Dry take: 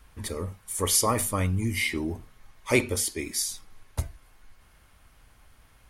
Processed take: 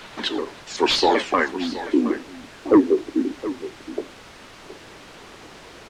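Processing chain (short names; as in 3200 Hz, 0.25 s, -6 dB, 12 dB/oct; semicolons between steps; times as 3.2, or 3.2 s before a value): repeated pitch sweeps -7 st, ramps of 0.191 s; steep high-pass 250 Hz 48 dB/oct; expander -52 dBFS; high shelf 2400 Hz +10.5 dB; upward compressor, threshold -30 dBFS; low-pass sweep 3900 Hz -> 400 Hz, 1.16–1.89; in parallel at -9 dB: sine folder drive 10 dB, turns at -6.5 dBFS; on the sum: added noise white -36 dBFS; tape spacing loss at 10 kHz 25 dB; on a send: echo 0.719 s -14 dB; on the sum: gain +2.5 dB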